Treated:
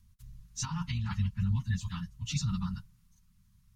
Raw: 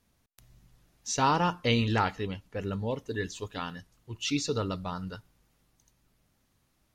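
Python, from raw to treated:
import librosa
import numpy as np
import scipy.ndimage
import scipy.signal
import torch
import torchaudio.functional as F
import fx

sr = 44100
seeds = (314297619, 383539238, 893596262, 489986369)

y = fx.low_shelf(x, sr, hz=170.0, db=8.0)
y = fx.stretch_vocoder_free(y, sr, factor=0.54)
y = scipy.signal.sosfilt(scipy.signal.ellip(3, 1.0, 40, [210.0, 980.0], 'bandstop', fs=sr, output='sos'), y)
y = fx.over_compress(y, sr, threshold_db=-34.0, ratio=-1.0)
y = fx.bass_treble(y, sr, bass_db=11, treble_db=5)
y = y * librosa.db_to_amplitude(-4.5)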